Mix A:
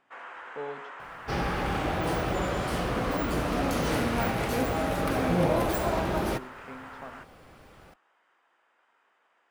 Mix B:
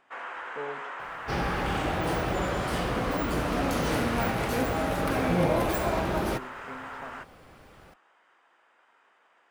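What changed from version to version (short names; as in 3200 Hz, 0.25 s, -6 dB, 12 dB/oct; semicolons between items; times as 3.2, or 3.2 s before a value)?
first sound +5.0 dB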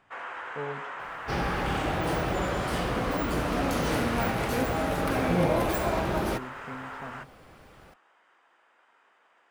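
speech: remove HPF 280 Hz 12 dB/oct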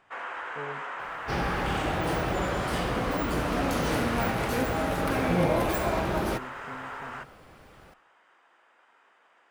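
speech -3.5 dB; first sound: send on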